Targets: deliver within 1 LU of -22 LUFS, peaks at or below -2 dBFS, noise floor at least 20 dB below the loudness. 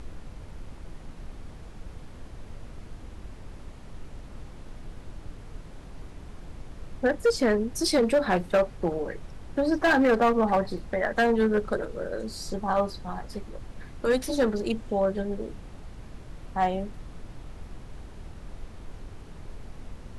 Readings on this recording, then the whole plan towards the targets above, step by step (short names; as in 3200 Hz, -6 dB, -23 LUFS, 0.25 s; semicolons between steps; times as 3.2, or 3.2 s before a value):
clipped 0.9%; flat tops at -16.5 dBFS; noise floor -45 dBFS; noise floor target -46 dBFS; loudness -26.0 LUFS; peak -16.5 dBFS; loudness target -22.0 LUFS
-> clip repair -16.5 dBFS; noise print and reduce 6 dB; gain +4 dB